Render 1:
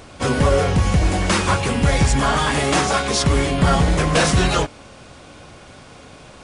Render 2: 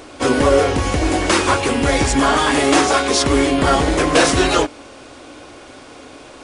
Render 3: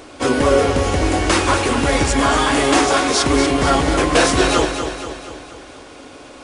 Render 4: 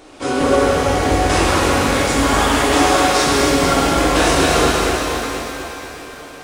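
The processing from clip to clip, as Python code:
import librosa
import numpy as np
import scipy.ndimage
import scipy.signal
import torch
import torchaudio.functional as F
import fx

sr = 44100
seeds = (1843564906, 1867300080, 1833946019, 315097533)

y1 = fx.low_shelf_res(x, sr, hz=230.0, db=-6.5, q=3.0)
y1 = F.gain(torch.from_numpy(y1), 3.0).numpy()
y2 = fx.echo_feedback(y1, sr, ms=239, feedback_pct=53, wet_db=-8.0)
y2 = F.gain(torch.from_numpy(y2), -1.0).numpy()
y3 = fx.rev_shimmer(y2, sr, seeds[0], rt60_s=3.1, semitones=7, shimmer_db=-8, drr_db=-5.5)
y3 = F.gain(torch.from_numpy(y3), -6.0).numpy()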